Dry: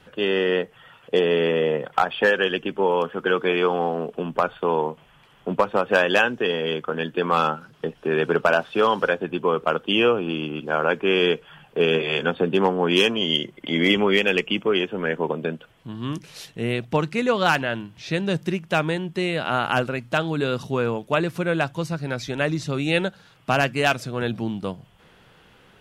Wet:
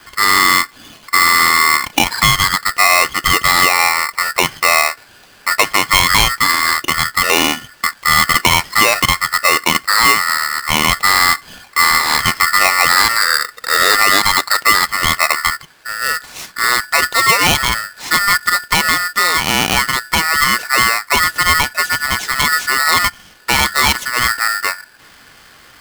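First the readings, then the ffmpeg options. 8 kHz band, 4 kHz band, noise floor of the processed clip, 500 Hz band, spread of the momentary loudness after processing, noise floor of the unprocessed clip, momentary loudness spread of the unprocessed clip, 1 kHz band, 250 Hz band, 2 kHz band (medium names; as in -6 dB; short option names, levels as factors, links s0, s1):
+27.5 dB, +12.5 dB, -44 dBFS, -5.0 dB, 7 LU, -54 dBFS, 9 LU, +11.5 dB, -2.5 dB, +13.0 dB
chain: -af "alimiter=level_in=3.55:limit=0.891:release=50:level=0:latency=1,aeval=exprs='val(0)*sgn(sin(2*PI*1600*n/s))':c=same,volume=0.891"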